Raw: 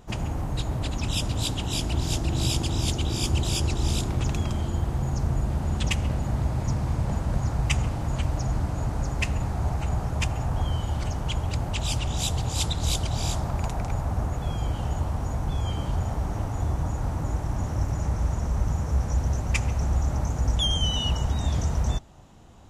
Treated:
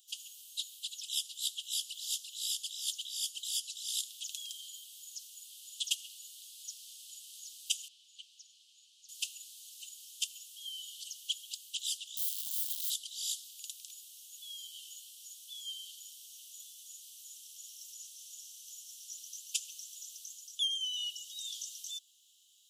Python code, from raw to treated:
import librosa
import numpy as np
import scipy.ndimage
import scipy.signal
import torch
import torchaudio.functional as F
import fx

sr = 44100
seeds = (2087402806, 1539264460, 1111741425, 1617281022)

y = fx.spacing_loss(x, sr, db_at_10k=21, at=(7.88, 9.09))
y = fx.overflow_wrap(y, sr, gain_db=27.0, at=(12.17, 12.9))
y = scipy.signal.sosfilt(scipy.signal.butter(16, 3000.0, 'highpass', fs=sr, output='sos'), y)
y = fx.peak_eq(y, sr, hz=5200.0, db=-12.0, octaves=2.2)
y = fx.rider(y, sr, range_db=4, speed_s=0.5)
y = F.gain(torch.from_numpy(y), 7.0).numpy()